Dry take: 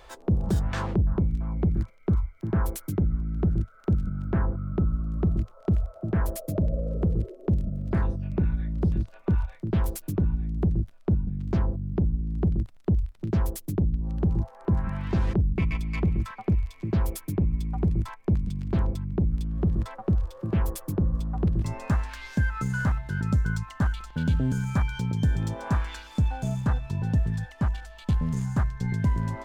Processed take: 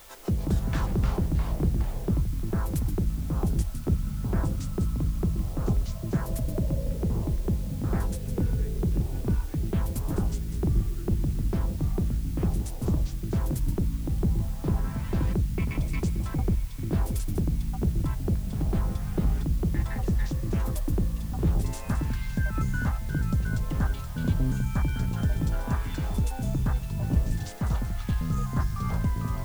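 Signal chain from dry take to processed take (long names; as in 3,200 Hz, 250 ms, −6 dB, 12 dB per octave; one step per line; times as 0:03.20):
delay with pitch and tempo change per echo 114 ms, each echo −4 semitones, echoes 3
bit-depth reduction 8 bits, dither triangular
level −3.5 dB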